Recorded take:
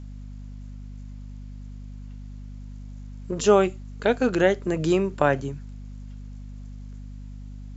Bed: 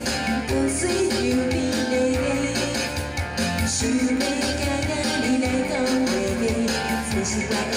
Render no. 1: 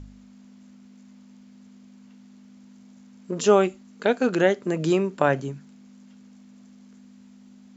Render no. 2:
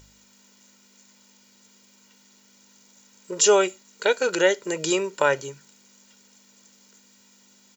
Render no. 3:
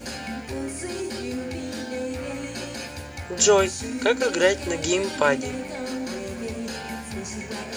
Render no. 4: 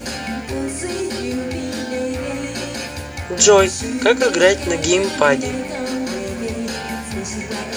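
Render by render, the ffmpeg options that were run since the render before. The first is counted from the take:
-af "bandreject=f=50:t=h:w=4,bandreject=f=100:t=h:w=4,bandreject=f=150:t=h:w=4"
-af "aemphasis=mode=production:type=riaa,aecho=1:1:2.1:0.67"
-filter_complex "[1:a]volume=0.355[s0];[0:a][s0]amix=inputs=2:normalize=0"
-af "volume=2.24,alimiter=limit=0.891:level=0:latency=1"

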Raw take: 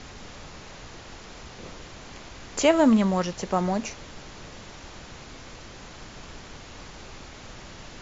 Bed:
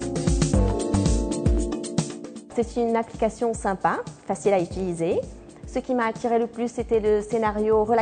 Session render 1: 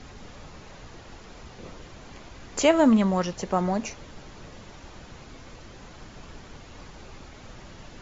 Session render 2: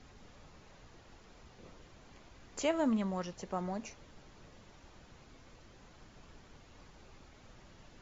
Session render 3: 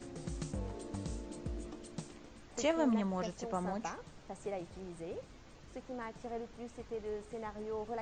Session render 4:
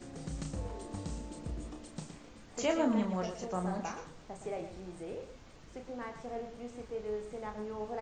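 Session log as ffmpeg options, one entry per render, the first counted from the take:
-af "afftdn=nr=6:nf=-44"
-af "volume=0.237"
-filter_complex "[1:a]volume=0.1[s0];[0:a][s0]amix=inputs=2:normalize=0"
-filter_complex "[0:a]asplit=2[s0][s1];[s1]adelay=33,volume=0.501[s2];[s0][s2]amix=inputs=2:normalize=0,aecho=1:1:116:0.316"

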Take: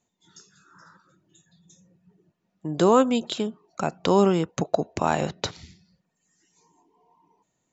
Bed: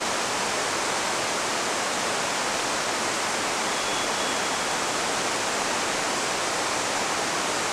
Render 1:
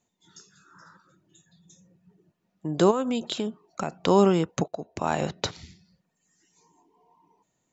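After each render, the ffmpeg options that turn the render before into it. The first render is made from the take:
-filter_complex "[0:a]asplit=3[s0][s1][s2];[s0]afade=t=out:st=2.9:d=0.02[s3];[s1]acompressor=threshold=0.0708:ratio=5:attack=3.2:release=140:knee=1:detection=peak,afade=t=in:st=2.9:d=0.02,afade=t=out:st=4.06:d=0.02[s4];[s2]afade=t=in:st=4.06:d=0.02[s5];[s3][s4][s5]amix=inputs=3:normalize=0,asplit=2[s6][s7];[s6]atrim=end=4.68,asetpts=PTS-STARTPTS,afade=t=out:st=4.676:d=0.004:c=hsin:silence=0.158489[s8];[s7]atrim=start=4.68,asetpts=PTS-STARTPTS,afade=t=in:d=0.66:silence=0.158489[s9];[s8][s9]concat=n=2:v=0:a=1"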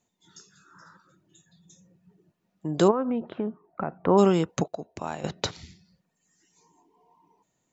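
-filter_complex "[0:a]asplit=3[s0][s1][s2];[s0]afade=t=out:st=2.87:d=0.02[s3];[s1]lowpass=f=1800:w=0.5412,lowpass=f=1800:w=1.3066,afade=t=in:st=2.87:d=0.02,afade=t=out:st=4.17:d=0.02[s4];[s2]afade=t=in:st=4.17:d=0.02[s5];[s3][s4][s5]amix=inputs=3:normalize=0,asplit=2[s6][s7];[s6]atrim=end=5.24,asetpts=PTS-STARTPTS,afade=t=out:st=4.71:d=0.53:silence=0.223872[s8];[s7]atrim=start=5.24,asetpts=PTS-STARTPTS,afade=t=in:d=0.004:c=hsin:silence=0.223872[s9];[s8][s9]concat=n=2:v=0:a=1"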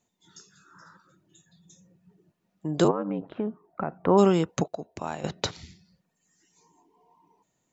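-filter_complex "[0:a]asettb=1/sr,asplit=3[s0][s1][s2];[s0]atrim=end=2.844[s3];[s1]atrim=start=2.84:end=3.36,asetpts=PTS-STARTPTS,afade=t=in:d=0.004:c=qsin,afade=t=out:st=0.516:d=0.004:c=qsin,aeval=exprs='val(0)*sin(2*PI*49*n/s)':c=same[s4];[s2]atrim=start=3.356[s5];[s3][s4]acrossfade=d=0.004:c1=hsin:c2=qsin[s6];[s6][s5]acrossfade=d=0.004:c1=qsin:c2=hsin"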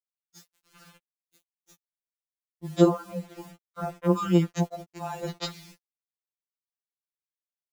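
-af "acrusher=bits=7:mix=0:aa=0.000001,afftfilt=real='re*2.83*eq(mod(b,8),0)':imag='im*2.83*eq(mod(b,8),0)':win_size=2048:overlap=0.75"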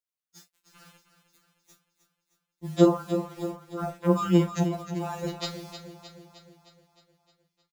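-filter_complex "[0:a]asplit=2[s0][s1];[s1]adelay=38,volume=0.266[s2];[s0][s2]amix=inputs=2:normalize=0,aecho=1:1:309|618|927|1236|1545|1854|2163:0.299|0.173|0.1|0.0582|0.0338|0.0196|0.0114"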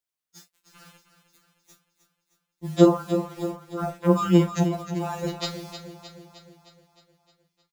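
-af "volume=1.41"

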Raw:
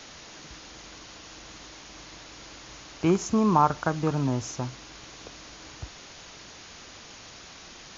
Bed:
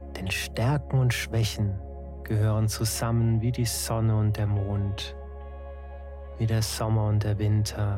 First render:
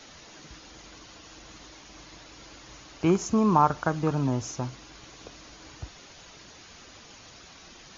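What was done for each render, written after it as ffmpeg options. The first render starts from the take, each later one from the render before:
-af "afftdn=nr=6:nf=-47"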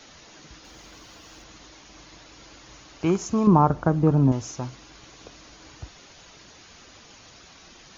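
-filter_complex "[0:a]asettb=1/sr,asplit=3[s0][s1][s2];[s0]atrim=end=0.644[s3];[s1]atrim=start=0.64:end=1.44,asetpts=PTS-STARTPTS,afade=t=in:d=0.004:c=qsin,afade=t=out:st=0.796:d=0.004:c=qsin,aeval=exprs='val(0)+0.5*0.00133*sgn(val(0))':c=same[s4];[s2]atrim=start=1.436[s5];[s3][s4]acrossfade=d=0.004:c1=hsin:c2=qsin[s6];[s6][s5]acrossfade=d=0.004:c1=qsin:c2=hsin,asettb=1/sr,asplit=3[s7][s8][s9];[s7]atrim=end=3.474[s10];[s8]atrim=start=3.47:end=4.32,asetpts=PTS-STARTPTS,afade=t=in:d=0.004:c=qsin,afade=t=out:st=0.846:d=0.004:c=qsin,tiltshelf=f=970:g=9[s11];[s9]atrim=start=4.316[s12];[s10][s11]acrossfade=d=0.004:c1=hsin:c2=qsin[s13];[s13][s12]acrossfade=d=0.004:c1=qsin:c2=hsin"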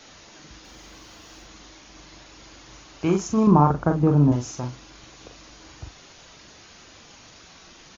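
-filter_complex "[0:a]asplit=2[s0][s1];[s1]adelay=41,volume=0.501[s2];[s0][s2]amix=inputs=2:normalize=0"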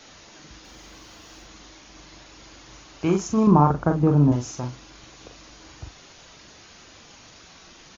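-af anull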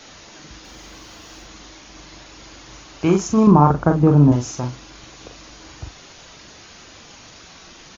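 -af "volume=1.78,alimiter=limit=0.794:level=0:latency=1"

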